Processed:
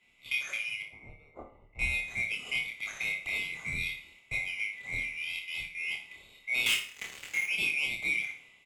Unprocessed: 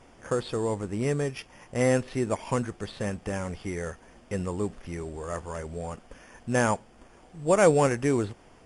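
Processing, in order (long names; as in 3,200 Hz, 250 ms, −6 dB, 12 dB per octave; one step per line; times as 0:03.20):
neighbouring bands swapped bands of 2,000 Hz
low-shelf EQ 440 Hz +4.5 dB
0:05.28–0:05.91: output level in coarse steps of 12 dB
0:06.66–0:07.46: leveller curve on the samples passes 5
downward compressor 6 to 1, threshold −32 dBFS, peak gain reduction 16.5 dB
0:00.82–0:01.79: Savitzky-Golay smoothing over 65 samples
double-tracking delay 27 ms −4.5 dB
flutter between parallel walls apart 9.9 metres, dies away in 0.38 s
convolution reverb RT60 0.75 s, pre-delay 12 ms, DRR 9.5 dB
multiband upward and downward expander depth 70%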